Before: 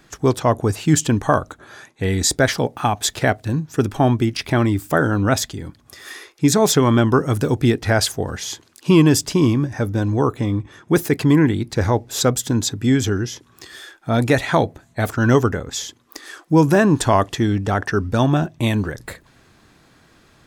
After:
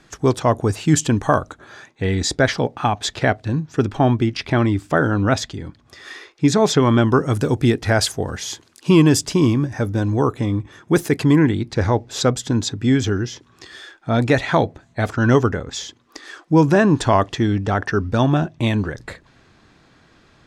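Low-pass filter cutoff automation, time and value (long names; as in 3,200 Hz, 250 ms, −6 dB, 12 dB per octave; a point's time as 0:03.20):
0:01.41 9,600 Hz
0:02.06 5,300 Hz
0:06.78 5,300 Hz
0:07.46 11,000 Hz
0:11.19 11,000 Hz
0:11.65 6,000 Hz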